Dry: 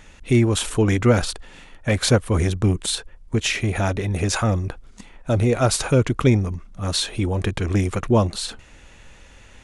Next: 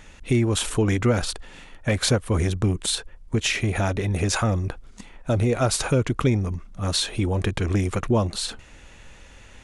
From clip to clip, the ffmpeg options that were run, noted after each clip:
-af "acompressor=threshold=0.112:ratio=2"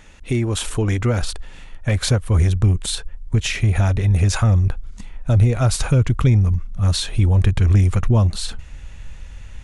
-af "asubboost=boost=5:cutoff=140"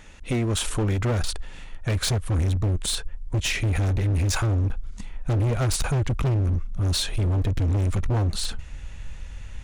-af "volume=8.91,asoftclip=hard,volume=0.112,volume=0.891"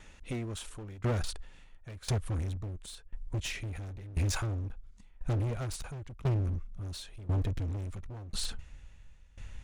-af "aeval=exprs='val(0)*pow(10,-19*if(lt(mod(0.96*n/s,1),2*abs(0.96)/1000),1-mod(0.96*n/s,1)/(2*abs(0.96)/1000),(mod(0.96*n/s,1)-2*abs(0.96)/1000)/(1-2*abs(0.96)/1000))/20)':c=same,volume=0.562"

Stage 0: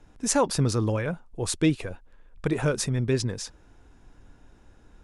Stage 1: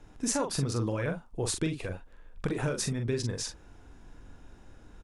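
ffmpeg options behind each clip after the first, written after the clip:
-filter_complex "[0:a]acompressor=threshold=0.0355:ratio=5,asplit=2[s0][s1];[s1]adelay=43,volume=0.501[s2];[s0][s2]amix=inputs=2:normalize=0,volume=1.12"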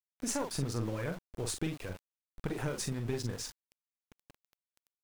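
-af "aeval=exprs='val(0)*gte(abs(val(0)),0.01)':c=same,aeval=exprs='(tanh(10*val(0)+0.6)-tanh(0.6))/10':c=same,volume=0.794"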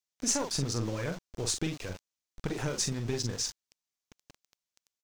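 -af "firequalizer=gain_entry='entry(1500,0);entry(6100,9);entry(9900,-3)':delay=0.05:min_phase=1,volume=1.26"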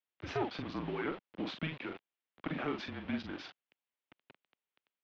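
-af "highpass=f=360:t=q:w=0.5412,highpass=f=360:t=q:w=1.307,lowpass=f=3400:t=q:w=0.5176,lowpass=f=3400:t=q:w=0.7071,lowpass=f=3400:t=q:w=1.932,afreqshift=-160,volume=1.12"

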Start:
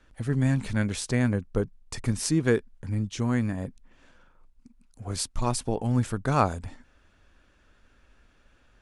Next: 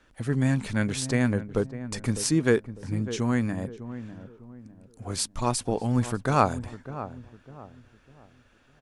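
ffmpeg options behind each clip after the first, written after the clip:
-filter_complex "[0:a]lowshelf=f=82:g=-10,asplit=2[s0][s1];[s1]adelay=602,lowpass=f=1000:p=1,volume=0.251,asplit=2[s2][s3];[s3]adelay=602,lowpass=f=1000:p=1,volume=0.38,asplit=2[s4][s5];[s5]adelay=602,lowpass=f=1000:p=1,volume=0.38,asplit=2[s6][s7];[s7]adelay=602,lowpass=f=1000:p=1,volume=0.38[s8];[s0][s2][s4][s6][s8]amix=inputs=5:normalize=0,volume=1.26"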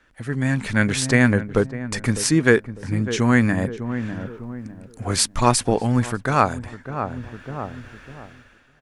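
-af "equalizer=f=1800:w=1.4:g=6.5,dynaudnorm=f=180:g=7:m=5.96,volume=0.891"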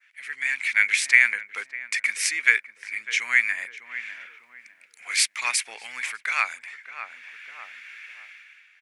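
-af "highpass=f=2200:t=q:w=7.3,adynamicequalizer=threshold=0.02:dfrequency=3200:dqfactor=0.84:tfrequency=3200:tqfactor=0.84:attack=5:release=100:ratio=0.375:range=2:mode=cutabove:tftype=bell,volume=0.75"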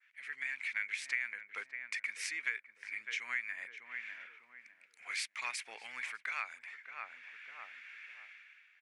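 -af "lowpass=f=3200:p=1,acompressor=threshold=0.0316:ratio=2.5,volume=0.447"

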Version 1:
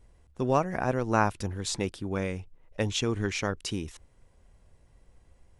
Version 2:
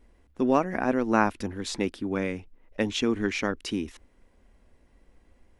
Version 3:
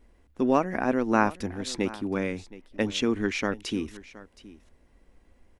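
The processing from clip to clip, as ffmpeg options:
-af "equalizer=f=125:t=o:w=1:g=-12,equalizer=f=250:t=o:w=1:g=10,equalizer=f=2000:t=o:w=1:g=4,equalizer=f=8000:t=o:w=1:g=-5"
-af "aecho=1:1:720:0.119"

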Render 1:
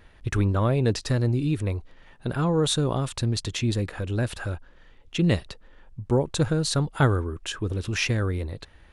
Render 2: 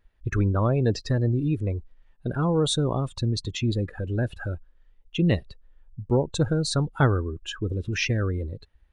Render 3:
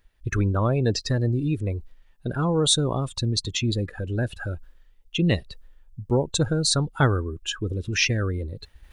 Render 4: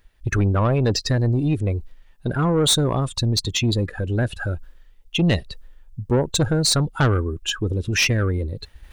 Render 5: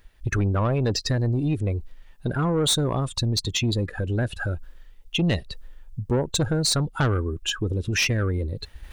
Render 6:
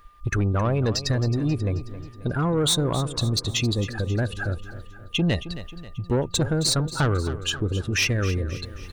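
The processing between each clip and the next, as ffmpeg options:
-af "afftdn=nr=19:nf=-33"
-af "highshelf=f=2800:g=9.5,areverse,acompressor=mode=upward:threshold=0.0158:ratio=2.5,areverse"
-af "asoftclip=type=tanh:threshold=0.133,volume=1.88"
-af "acompressor=threshold=0.0178:ratio=1.5,volume=1.41"
-af "aeval=exprs='val(0)+0.00224*sin(2*PI*1200*n/s)':c=same,aecho=1:1:268|536|804|1072|1340:0.211|0.106|0.0528|0.0264|0.0132"

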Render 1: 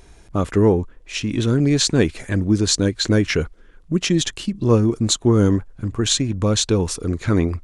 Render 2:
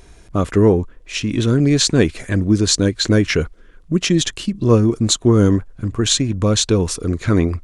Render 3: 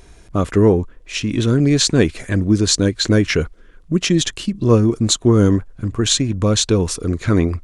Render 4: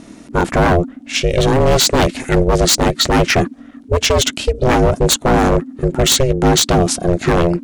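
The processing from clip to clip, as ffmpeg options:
-af "bandreject=f=850:w=12,volume=1.33"
-af anull
-af "aeval=exprs='0.251*(abs(mod(val(0)/0.251+3,4)-2)-1)':c=same,aeval=exprs='val(0)*sin(2*PI*260*n/s)':c=same,volume=2.66"

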